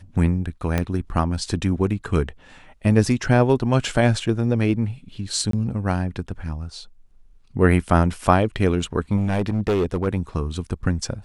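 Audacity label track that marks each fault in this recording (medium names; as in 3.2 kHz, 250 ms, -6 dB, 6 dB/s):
0.780000	0.780000	pop -8 dBFS
5.510000	5.530000	dropout 23 ms
9.160000	10.080000	clipped -16.5 dBFS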